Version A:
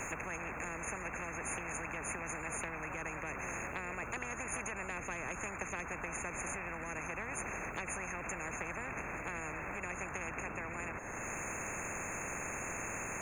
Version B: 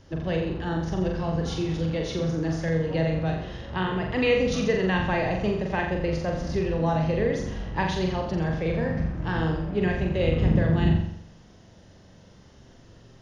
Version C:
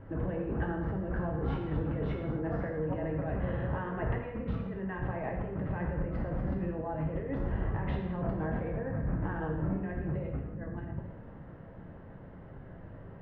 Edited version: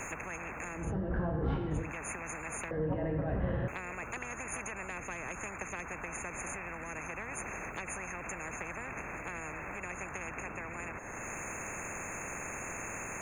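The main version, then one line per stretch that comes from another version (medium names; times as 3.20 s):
A
0.83–1.82 s: from C, crossfade 0.24 s
2.71–3.68 s: from C
not used: B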